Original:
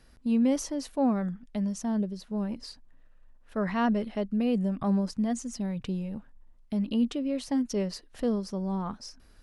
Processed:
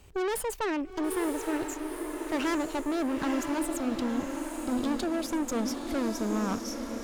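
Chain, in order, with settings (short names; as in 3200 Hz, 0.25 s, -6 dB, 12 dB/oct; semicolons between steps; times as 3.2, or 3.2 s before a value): speed glide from 163% -> 105%; tube stage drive 34 dB, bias 0.65; diffused feedback echo 0.923 s, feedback 54%, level -5 dB; gain +6.5 dB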